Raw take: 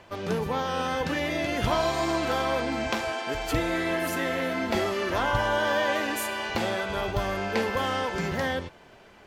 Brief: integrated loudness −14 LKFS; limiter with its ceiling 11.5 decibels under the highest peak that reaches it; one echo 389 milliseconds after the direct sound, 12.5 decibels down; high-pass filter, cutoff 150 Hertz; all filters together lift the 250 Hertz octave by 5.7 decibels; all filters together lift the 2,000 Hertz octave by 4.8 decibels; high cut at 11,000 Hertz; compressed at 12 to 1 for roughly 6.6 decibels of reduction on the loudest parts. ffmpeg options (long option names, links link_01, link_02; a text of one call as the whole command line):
ffmpeg -i in.wav -af "highpass=150,lowpass=11000,equalizer=frequency=250:width_type=o:gain=8,equalizer=frequency=2000:width_type=o:gain=6,acompressor=threshold=-25dB:ratio=12,alimiter=limit=-23dB:level=0:latency=1,aecho=1:1:389:0.237,volume=17.5dB" out.wav